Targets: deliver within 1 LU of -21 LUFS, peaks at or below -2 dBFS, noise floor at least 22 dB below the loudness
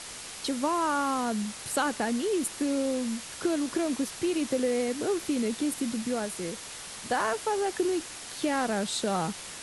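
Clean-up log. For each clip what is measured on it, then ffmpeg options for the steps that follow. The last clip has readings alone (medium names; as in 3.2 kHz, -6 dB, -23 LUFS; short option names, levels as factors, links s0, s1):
noise floor -42 dBFS; noise floor target -52 dBFS; loudness -29.5 LUFS; peak level -15.5 dBFS; loudness target -21.0 LUFS
-> -af "afftdn=nr=10:nf=-42"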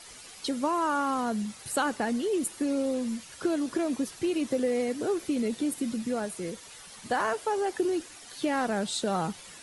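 noise floor -48 dBFS; noise floor target -52 dBFS
-> -af "afftdn=nr=6:nf=-48"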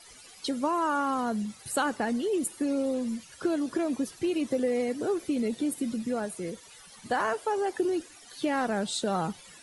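noise floor -52 dBFS; loudness -30.0 LUFS; peak level -15.5 dBFS; loudness target -21.0 LUFS
-> -af "volume=2.82"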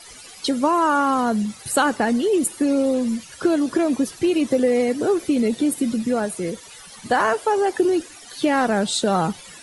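loudness -21.0 LUFS; peak level -6.5 dBFS; noise floor -43 dBFS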